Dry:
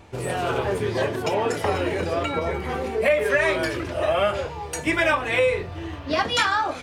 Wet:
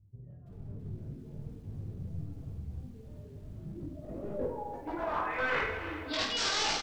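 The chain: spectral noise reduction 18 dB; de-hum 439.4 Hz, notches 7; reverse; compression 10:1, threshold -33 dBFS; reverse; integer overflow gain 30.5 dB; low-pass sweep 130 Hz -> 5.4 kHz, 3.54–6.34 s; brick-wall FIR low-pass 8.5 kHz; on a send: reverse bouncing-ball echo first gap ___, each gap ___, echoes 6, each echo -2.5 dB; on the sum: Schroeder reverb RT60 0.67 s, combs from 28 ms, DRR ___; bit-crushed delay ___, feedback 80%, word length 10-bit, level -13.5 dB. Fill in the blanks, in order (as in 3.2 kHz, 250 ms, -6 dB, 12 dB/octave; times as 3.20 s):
20 ms, 1.5×, 12.5 dB, 330 ms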